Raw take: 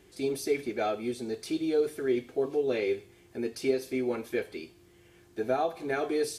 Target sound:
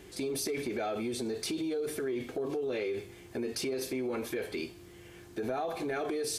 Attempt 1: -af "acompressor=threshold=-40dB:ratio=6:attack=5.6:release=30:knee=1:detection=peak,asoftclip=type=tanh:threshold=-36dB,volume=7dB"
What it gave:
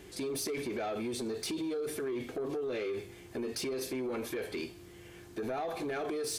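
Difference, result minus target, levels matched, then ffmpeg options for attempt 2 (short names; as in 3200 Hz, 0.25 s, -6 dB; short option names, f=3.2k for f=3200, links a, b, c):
soft clip: distortion +18 dB
-af "acompressor=threshold=-40dB:ratio=6:attack=5.6:release=30:knee=1:detection=peak,asoftclip=type=tanh:threshold=-25.5dB,volume=7dB"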